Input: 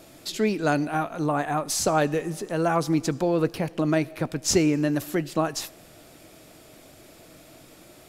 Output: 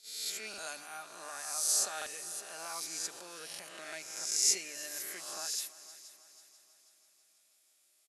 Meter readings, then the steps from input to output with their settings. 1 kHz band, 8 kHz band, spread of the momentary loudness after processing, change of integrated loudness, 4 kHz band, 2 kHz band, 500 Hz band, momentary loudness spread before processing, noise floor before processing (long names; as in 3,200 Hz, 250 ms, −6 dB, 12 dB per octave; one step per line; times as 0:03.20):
−18.0 dB, 0.0 dB, 17 LU, −9.5 dB, −3.0 dB, −11.5 dB, −24.0 dB, 7 LU, −51 dBFS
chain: peak hold with a rise ahead of every peak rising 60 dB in 1.08 s
low-shelf EQ 200 Hz −4.5 dB
comb filter 5 ms, depth 35%
noise gate −38 dBFS, range −12 dB
linear-phase brick-wall low-pass 12,000 Hz
first difference
mains-hum notches 50/100/150 Hz
echo machine with several playback heads 163 ms, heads second and third, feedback 50%, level −18.5 dB
buffer that repeats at 0:00.49/0:01.97/0:03.50/0:05.49, samples 2,048, times 1
level −5 dB